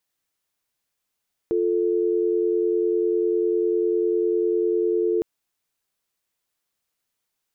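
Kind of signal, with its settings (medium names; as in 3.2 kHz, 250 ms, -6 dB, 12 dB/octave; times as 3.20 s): call progress tone dial tone, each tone -21.5 dBFS 3.71 s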